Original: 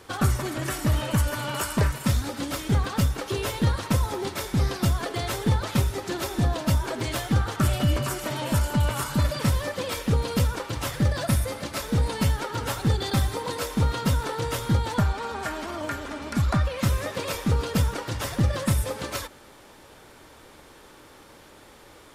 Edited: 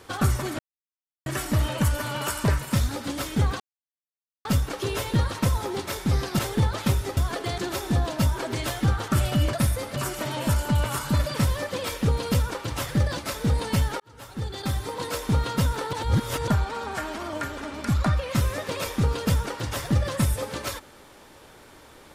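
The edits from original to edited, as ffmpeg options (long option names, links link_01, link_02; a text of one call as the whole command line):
ffmpeg -i in.wav -filter_complex "[0:a]asplit=12[link_01][link_02][link_03][link_04][link_05][link_06][link_07][link_08][link_09][link_10][link_11][link_12];[link_01]atrim=end=0.59,asetpts=PTS-STARTPTS,afade=type=out:start_time=0.586:duration=0.004:curve=hsin,apad=pad_dur=0.67[link_13];[link_02]atrim=start=0.59:end=2.93,asetpts=PTS-STARTPTS,afade=type=in:duration=0.004:curve=hsin,afade=type=out:start_time=2.336:duration=0.004:curve=hsin,apad=pad_dur=0.85[link_14];[link_03]atrim=start=2.93:end=4.872,asetpts=PTS-STARTPTS,afade=type=in:duration=0.004:curve=hsin[link_15];[link_04]atrim=start=5.278:end=6.062[link_16];[link_05]atrim=start=4.868:end=5.282[link_17];[link_06]atrim=start=6.058:end=8.012[link_18];[link_07]atrim=start=11.218:end=11.652[link_19];[link_08]atrim=start=8.008:end=11.222[link_20];[link_09]atrim=start=11.648:end=12.48,asetpts=PTS-STARTPTS,afade=type=out:start_time=0.828:duration=0.004:curve=hsin[link_21];[link_10]atrim=start=12.48:end=14.412,asetpts=PTS-STARTPTS,afade=type=in:duration=1.15[link_22];[link_11]atrim=start=14.408:end=14.962,asetpts=PTS-STARTPTS,areverse[link_23];[link_12]atrim=start=14.958[link_24];[link_13][link_14][link_15]concat=n=3:v=0:a=1[link_25];[link_25][link_16]acrossfade=duration=0.004:curve1=hsin:curve2=hsin[link_26];[link_26][link_17]acrossfade=duration=0.004:curve1=hsin:curve2=hsin[link_27];[link_27][link_18]acrossfade=duration=0.004:curve1=hsin:curve2=hsin[link_28];[link_28][link_19]acrossfade=duration=0.004:curve1=hsin:curve2=hsin[link_29];[link_29][link_20]acrossfade=duration=0.004:curve1=hsin:curve2=hsin[link_30];[link_21][link_22]concat=n=2:v=0:a=1[link_31];[link_30][link_31]acrossfade=duration=0.004:curve1=hsin:curve2=hsin[link_32];[link_32][link_23]acrossfade=duration=0.004:curve1=hsin:curve2=hsin[link_33];[link_33][link_24]acrossfade=duration=0.004:curve1=hsin:curve2=hsin" out.wav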